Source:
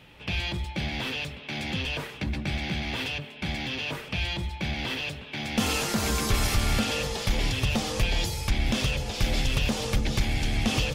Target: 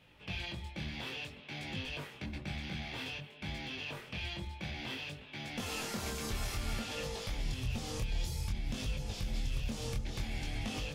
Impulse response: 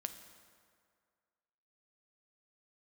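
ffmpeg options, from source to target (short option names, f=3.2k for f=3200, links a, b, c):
-filter_complex "[0:a]asettb=1/sr,asplit=3[a][b][c];[a]atrim=end=7.384[d];[b]atrim=start=7.38:end=10.04,asetpts=PTS-STARTPTS,afade=t=in:d=0.004:c=qsin,afade=t=out:st=2.656:d=0.004:c=qsin,bass=f=250:g=8,treble=f=4k:g=4[e];[c]atrim=start=10.036[f];[d][e]acrossfade=d=0.004:c1=hsin:c2=qsin[g];[g][f]acrossfade=d=0.004:c1=qsin:c2=hsin,alimiter=limit=-18dB:level=0:latency=1:release=238,flanger=delay=19.5:depth=6.8:speed=0.56,volume=-7dB"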